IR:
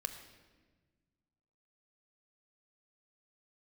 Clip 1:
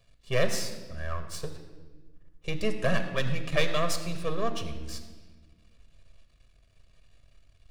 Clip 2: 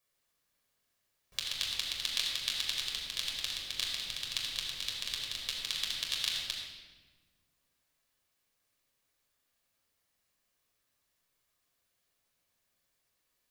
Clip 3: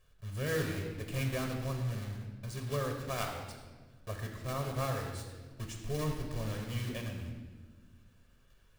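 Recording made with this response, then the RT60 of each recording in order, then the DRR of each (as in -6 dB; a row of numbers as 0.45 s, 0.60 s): 1; 1.4 s, 1.4 s, 1.4 s; 7.0 dB, -3.0 dB, 1.5 dB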